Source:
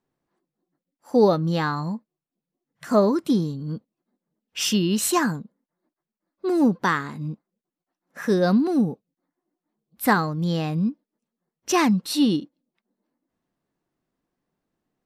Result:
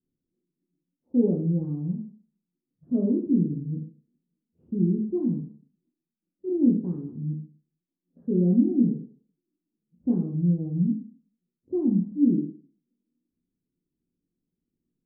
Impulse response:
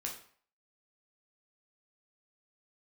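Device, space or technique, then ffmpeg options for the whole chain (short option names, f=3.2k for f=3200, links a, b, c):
next room: -filter_complex "[0:a]lowpass=f=340:w=0.5412,lowpass=f=340:w=1.3066[a];[1:a]atrim=start_sample=2205[b];[a][b]afir=irnorm=-1:irlink=0"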